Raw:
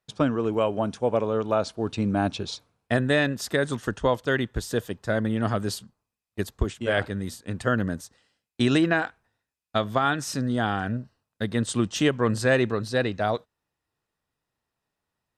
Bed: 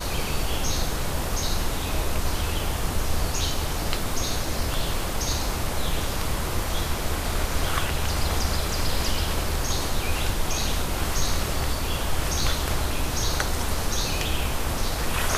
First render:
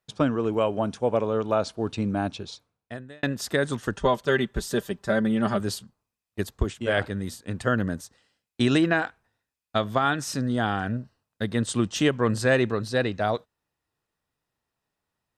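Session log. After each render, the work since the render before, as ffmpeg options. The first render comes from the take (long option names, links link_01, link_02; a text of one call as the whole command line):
ffmpeg -i in.wav -filter_complex "[0:a]asettb=1/sr,asplit=3[link_01][link_02][link_03];[link_01]atrim=end=3.964[link_04];[link_02]atrim=start=3.96:end=5.6,asetpts=PTS-STARTPTS,afade=type=in:duration=0.004:curve=qsin,afade=type=out:start_time=1.636:duration=0.004:curve=qsin,aecho=1:1:5.1:0.65,atrim=end_sample=72324[link_05];[link_03]atrim=start=5.596[link_06];[link_04][link_05]acrossfade=duration=0.004:curve1=hsin:curve2=qsin[link_07];[link_07][link_06]acrossfade=duration=0.004:curve1=qsin:curve2=hsin,asplit=2[link_08][link_09];[link_08]atrim=end=3.23,asetpts=PTS-STARTPTS,afade=type=out:start_time=1.82:duration=1.41[link_10];[link_09]atrim=start=3.23,asetpts=PTS-STARTPTS,afade=type=in:duration=0.004:curve=hsin[link_11];[link_10][link_11]concat=n=2:v=0:a=1" out.wav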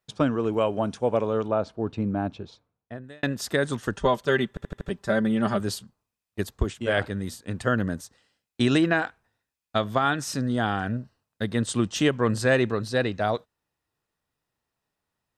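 ffmpeg -i in.wav -filter_complex "[0:a]asettb=1/sr,asplit=3[link_01][link_02][link_03];[link_01]atrim=end=1.484[link_04];[link_02]atrim=start=1.48:end=3.04,asetpts=PTS-STARTPTS,afade=type=in:duration=0.004:curve=qsin,afade=type=out:start_time=1.556:duration=0.004:curve=qsin,lowpass=frequency=1200:poles=1[link_05];[link_03]atrim=start=3.036[link_06];[link_04][link_05]acrossfade=duration=0.004:curve1=hsin:curve2=qsin[link_07];[link_07][link_06]acrossfade=duration=0.004:curve1=qsin:curve2=hsin,asplit=6[link_08][link_09][link_10][link_11][link_12][link_13];[link_08]atrim=end=4.572[link_14];[link_09]atrim=start=4.488:end=4.572[link_15];[link_10]atrim=start=4.488:end=4.572[link_16];[link_11]atrim=start=4.488:end=4.572[link_17];[link_12]atrim=start=4.488:end=4.572[link_18];[link_13]atrim=start=4.888[link_19];[link_14][link_15]acrossfade=duration=0.004:curve1=hsin:curve2=hsin[link_20];[link_20][link_16]acrossfade=duration=0.004:curve1=hsin:curve2=hsin[link_21];[link_21][link_17]acrossfade=duration=0.004:curve1=hsin:curve2=hsin[link_22];[link_22][link_18]acrossfade=duration=0.004:curve1=hsin:curve2=hsin[link_23];[link_23][link_19]acrossfade=duration=0.004:curve1=hsin:curve2=hsin" out.wav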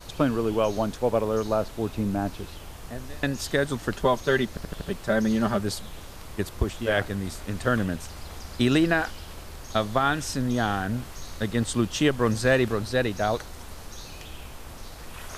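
ffmpeg -i in.wav -i bed.wav -filter_complex "[1:a]volume=-15dB[link_01];[0:a][link_01]amix=inputs=2:normalize=0" out.wav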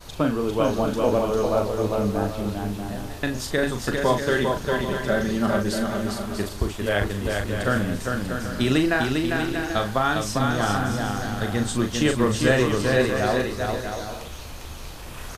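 ffmpeg -i in.wav -filter_complex "[0:a]asplit=2[link_01][link_02];[link_02]adelay=39,volume=-6.5dB[link_03];[link_01][link_03]amix=inputs=2:normalize=0,aecho=1:1:400|640|784|870.4|922.2:0.631|0.398|0.251|0.158|0.1" out.wav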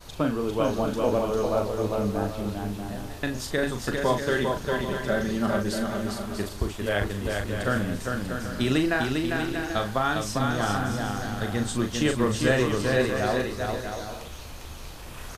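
ffmpeg -i in.wav -af "volume=-3dB" out.wav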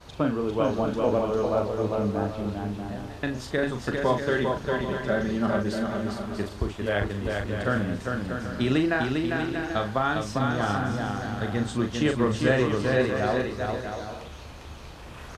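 ffmpeg -i in.wav -af "highpass=43,aemphasis=mode=reproduction:type=50fm" out.wav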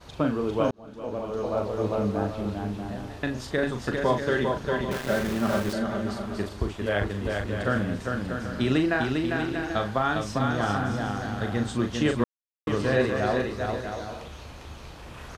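ffmpeg -i in.wav -filter_complex "[0:a]asettb=1/sr,asplit=3[link_01][link_02][link_03];[link_01]atrim=end=4.914[link_04];[link_02]atrim=start=4.91:end=5.73,asetpts=PTS-STARTPTS,afade=type=in:duration=0.004:curve=qsin,afade=type=out:start_time=0.816:duration=0.004:curve=qsin,aeval=exprs='val(0)*gte(abs(val(0)),0.0316)':channel_layout=same[link_05];[link_03]atrim=start=5.726[link_06];[link_04][link_05]acrossfade=duration=0.004:curve1=hsin:curve2=qsin[link_07];[link_07][link_06]acrossfade=duration=0.004:curve1=qsin:curve2=hsin,asplit=4[link_08][link_09][link_10][link_11];[link_08]atrim=end=0.71,asetpts=PTS-STARTPTS,afade=type=out:start_time=0.706:duration=0.004:curve=hsin[link_12];[link_09]atrim=start=0.71:end=12.24,asetpts=PTS-STARTPTS,afade=type=in:duration=1.16,afade=type=out:start_time=11.526:duration=0.004:curve=hsin[link_13];[link_10]atrim=start=12.24:end=12.67,asetpts=PTS-STARTPTS,volume=0[link_14];[link_11]atrim=start=12.67,asetpts=PTS-STARTPTS,afade=type=in:duration=0.004:curve=hsin[link_15];[link_12][link_13][link_14][link_15]concat=n=4:v=0:a=1" out.wav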